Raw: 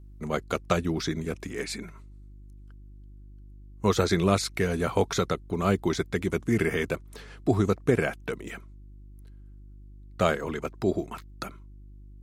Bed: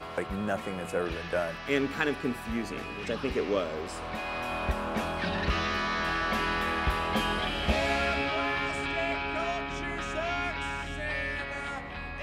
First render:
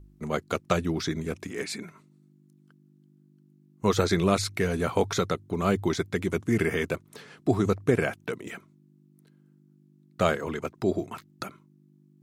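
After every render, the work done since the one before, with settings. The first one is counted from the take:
hum removal 50 Hz, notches 2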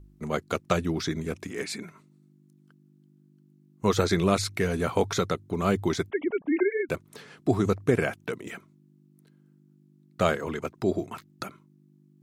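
0:06.10–0:06.89: three sine waves on the formant tracks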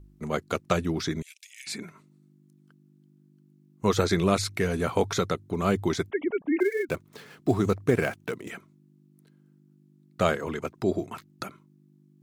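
0:01.22–0:01.67: Butterworth high-pass 2,400 Hz
0:06.60–0:08.49: gap after every zero crossing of 0.052 ms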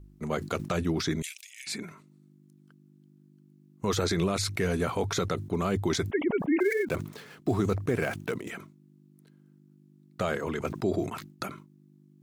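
brickwall limiter −16.5 dBFS, peak gain reduction 9 dB
level that may fall only so fast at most 110 dB per second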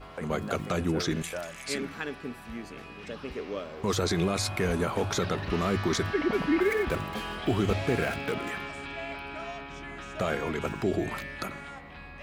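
mix in bed −7 dB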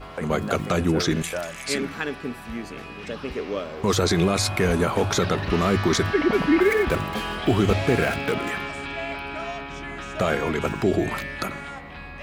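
level +6.5 dB

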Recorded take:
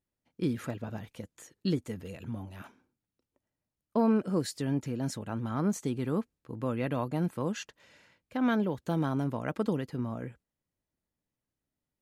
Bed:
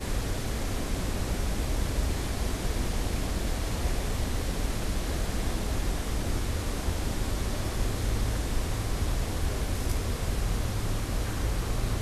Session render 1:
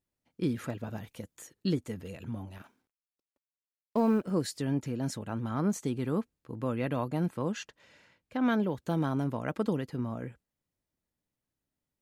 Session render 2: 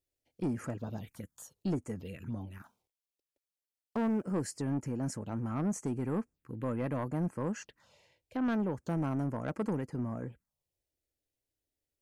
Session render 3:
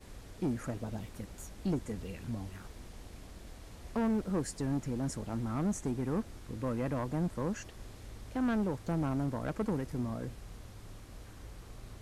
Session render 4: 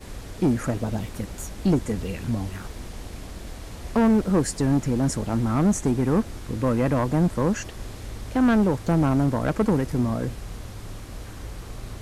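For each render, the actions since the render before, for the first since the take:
0:00.77–0:01.53: high-shelf EQ 9,200 Hz +7.5 dB; 0:02.58–0:04.31: mu-law and A-law mismatch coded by A; 0:07.28–0:08.46: high-shelf EQ 10,000 Hz −7 dB
phaser swept by the level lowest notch 190 Hz, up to 3,700 Hz, full sweep at −31.5 dBFS; soft clipping −26 dBFS, distortion −13 dB
mix in bed −19.5 dB
level +12 dB

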